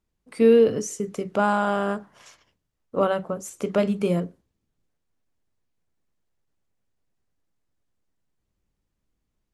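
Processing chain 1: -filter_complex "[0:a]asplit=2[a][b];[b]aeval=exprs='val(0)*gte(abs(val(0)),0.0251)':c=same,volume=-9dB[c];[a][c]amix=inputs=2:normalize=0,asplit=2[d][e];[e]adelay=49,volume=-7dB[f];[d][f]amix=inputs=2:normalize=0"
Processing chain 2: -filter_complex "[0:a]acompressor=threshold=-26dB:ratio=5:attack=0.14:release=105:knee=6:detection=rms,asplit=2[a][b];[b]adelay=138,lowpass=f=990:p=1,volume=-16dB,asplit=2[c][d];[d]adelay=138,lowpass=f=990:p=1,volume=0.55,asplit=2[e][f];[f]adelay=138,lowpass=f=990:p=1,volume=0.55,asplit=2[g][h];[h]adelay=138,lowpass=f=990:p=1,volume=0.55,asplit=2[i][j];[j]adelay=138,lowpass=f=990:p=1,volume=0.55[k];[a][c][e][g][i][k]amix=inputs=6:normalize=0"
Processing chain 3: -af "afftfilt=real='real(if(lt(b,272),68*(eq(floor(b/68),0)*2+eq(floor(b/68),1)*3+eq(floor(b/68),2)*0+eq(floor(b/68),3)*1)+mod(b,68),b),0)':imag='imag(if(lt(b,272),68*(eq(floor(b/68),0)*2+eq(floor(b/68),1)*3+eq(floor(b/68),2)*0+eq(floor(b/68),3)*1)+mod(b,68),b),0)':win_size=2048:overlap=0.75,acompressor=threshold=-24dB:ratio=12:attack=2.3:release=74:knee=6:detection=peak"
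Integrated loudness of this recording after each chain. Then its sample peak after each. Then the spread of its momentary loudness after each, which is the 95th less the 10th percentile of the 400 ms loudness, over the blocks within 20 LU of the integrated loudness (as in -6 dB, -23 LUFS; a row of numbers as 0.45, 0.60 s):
-20.0, -34.0, -28.0 LUFS; -3.0, -21.0, -16.5 dBFS; 14, 16, 9 LU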